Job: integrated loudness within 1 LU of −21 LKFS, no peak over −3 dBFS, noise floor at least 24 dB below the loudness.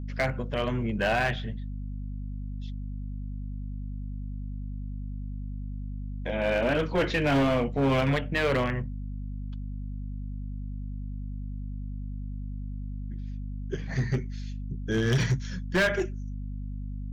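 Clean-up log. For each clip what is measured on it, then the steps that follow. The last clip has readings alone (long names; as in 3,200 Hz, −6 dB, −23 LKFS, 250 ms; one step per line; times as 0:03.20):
share of clipped samples 1.6%; peaks flattened at −19.5 dBFS; mains hum 50 Hz; hum harmonics up to 250 Hz; level of the hum −32 dBFS; integrated loudness −31.0 LKFS; sample peak −19.5 dBFS; target loudness −21.0 LKFS
→ clipped peaks rebuilt −19.5 dBFS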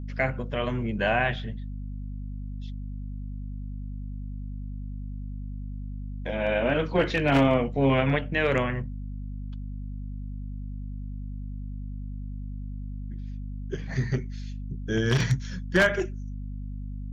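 share of clipped samples 0.0%; mains hum 50 Hz; hum harmonics up to 250 Hz; level of the hum −32 dBFS
→ hum removal 50 Hz, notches 5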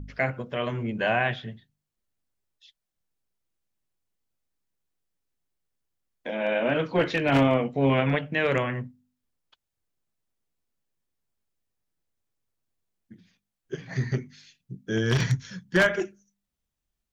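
mains hum none found; integrated loudness −26.0 LKFS; sample peak −9.5 dBFS; target loudness −21.0 LKFS
→ level +5 dB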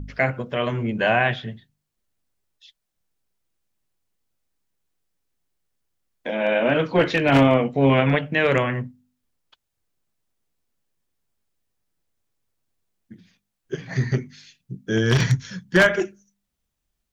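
integrated loudness −21.0 LKFS; sample peak −4.5 dBFS; background noise floor −79 dBFS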